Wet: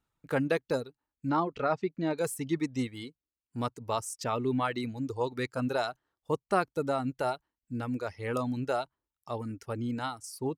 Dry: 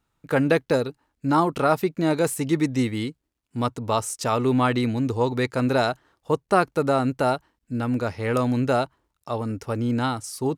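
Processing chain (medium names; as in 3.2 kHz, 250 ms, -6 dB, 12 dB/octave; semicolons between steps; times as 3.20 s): reverb removal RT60 1.4 s; 1.29–2.18 s: Bessel low-pass 3.9 kHz, order 6; trim -7.5 dB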